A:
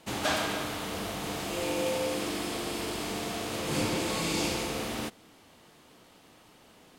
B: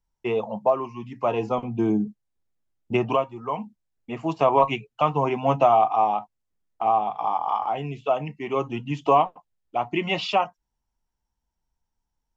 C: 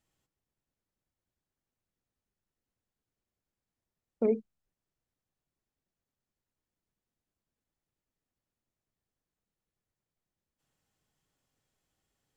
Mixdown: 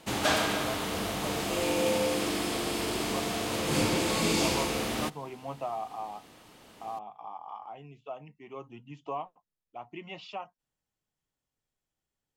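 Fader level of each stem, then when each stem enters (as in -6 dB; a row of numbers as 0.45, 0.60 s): +2.5, -17.5, -7.5 dB; 0.00, 0.00, 0.00 s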